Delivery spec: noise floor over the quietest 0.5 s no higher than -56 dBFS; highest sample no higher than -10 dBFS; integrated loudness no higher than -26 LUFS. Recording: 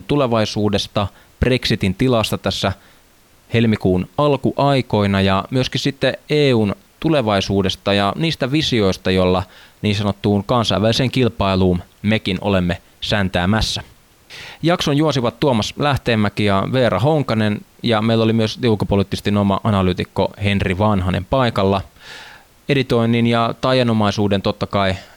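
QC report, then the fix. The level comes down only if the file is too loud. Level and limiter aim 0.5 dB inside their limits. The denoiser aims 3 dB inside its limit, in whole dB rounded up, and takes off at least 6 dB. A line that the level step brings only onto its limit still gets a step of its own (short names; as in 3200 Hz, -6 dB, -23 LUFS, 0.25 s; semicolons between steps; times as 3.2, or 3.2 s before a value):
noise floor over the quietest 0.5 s -51 dBFS: fail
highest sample -6.0 dBFS: fail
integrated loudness -17.5 LUFS: fail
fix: gain -9 dB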